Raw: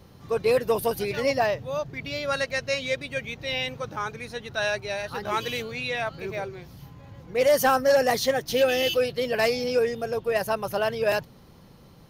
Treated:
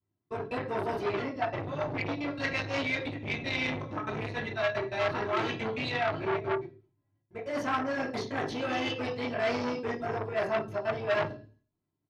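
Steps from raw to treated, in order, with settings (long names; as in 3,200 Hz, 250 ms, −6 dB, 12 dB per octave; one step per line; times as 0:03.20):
high-pass filter 120 Hz 6 dB per octave
noise gate −39 dBFS, range −43 dB
low-pass filter 6,000 Hz 12 dB per octave
spectral tilt −2.5 dB per octave
comb filter 3 ms, depth 56%
reversed playback
downward compressor 16 to 1, threshold −30 dBFS, peak gain reduction 18 dB
reversed playback
gate pattern "xxxxx.x.xx" 177 BPM −60 dB
convolution reverb RT60 0.40 s, pre-delay 3 ms, DRR −7 dB
saturating transformer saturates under 1,600 Hz
level +1 dB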